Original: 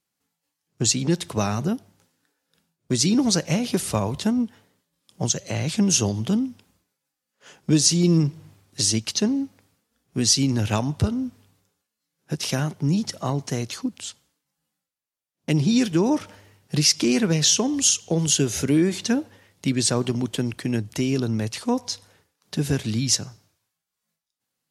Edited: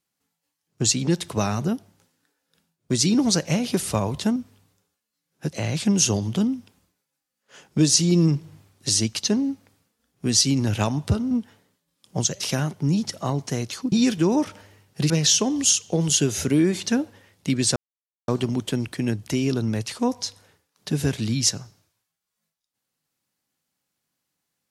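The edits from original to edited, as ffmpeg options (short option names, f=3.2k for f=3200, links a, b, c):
-filter_complex "[0:a]asplit=8[a][b][c][d][e][f][g][h];[a]atrim=end=4.362[i];[b]atrim=start=11.228:end=12.402[j];[c]atrim=start=5.448:end=11.232[k];[d]atrim=start=4.358:end=5.452[l];[e]atrim=start=12.398:end=13.922[m];[f]atrim=start=15.658:end=16.842[n];[g]atrim=start=17.278:end=19.94,asetpts=PTS-STARTPTS,afade=t=out:st=2.658:d=0.004:c=hsin,apad=pad_dur=0.52[o];[h]atrim=start=19.94,asetpts=PTS-STARTPTS,afade=t=in:d=0.004:c=hsin[p];[i][j]acrossfade=d=0.004:c1=hsin:c2=hsin[q];[q][k]acrossfade=d=0.004:c1=hsin:c2=hsin[r];[r][l]acrossfade=d=0.004:c1=hsin:c2=hsin[s];[s][m]acrossfade=d=0.004:c1=hsin:c2=hsin[t];[t][n]acrossfade=d=0.004:c1=hsin:c2=hsin[u];[o][p]concat=n=2:v=0:a=1[v];[u][v]acrossfade=d=0.004:c1=hsin:c2=hsin"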